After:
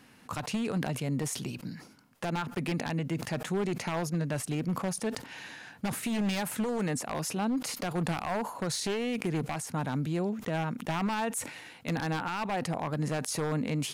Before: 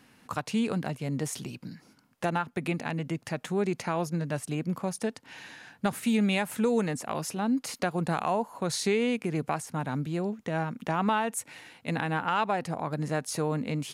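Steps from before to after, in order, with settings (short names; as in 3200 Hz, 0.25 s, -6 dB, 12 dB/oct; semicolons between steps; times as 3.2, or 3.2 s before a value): one-sided fold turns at -23 dBFS; limiter -25 dBFS, peak gain reduction 8.5 dB; sustainer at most 100 dB/s; gain +1.5 dB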